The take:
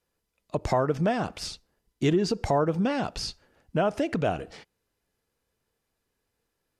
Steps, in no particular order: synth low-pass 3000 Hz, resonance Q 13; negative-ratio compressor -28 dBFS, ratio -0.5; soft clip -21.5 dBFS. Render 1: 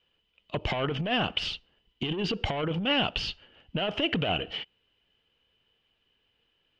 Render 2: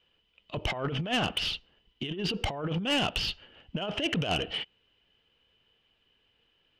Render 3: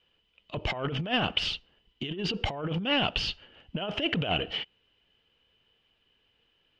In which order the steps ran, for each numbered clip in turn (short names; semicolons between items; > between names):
soft clip > negative-ratio compressor > synth low-pass; negative-ratio compressor > synth low-pass > soft clip; negative-ratio compressor > soft clip > synth low-pass